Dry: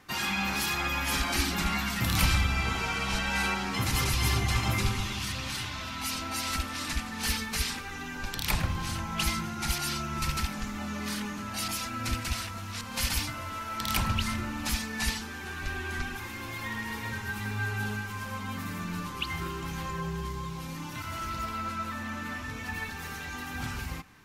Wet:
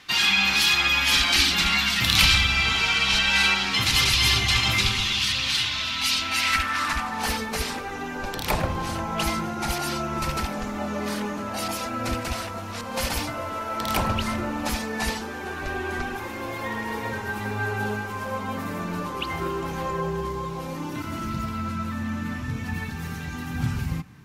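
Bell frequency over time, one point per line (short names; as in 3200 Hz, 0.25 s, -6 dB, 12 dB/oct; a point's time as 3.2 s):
bell +15 dB 1.9 oct
6.2 s 3500 Hz
7.42 s 540 Hz
20.73 s 540 Hz
21.49 s 140 Hz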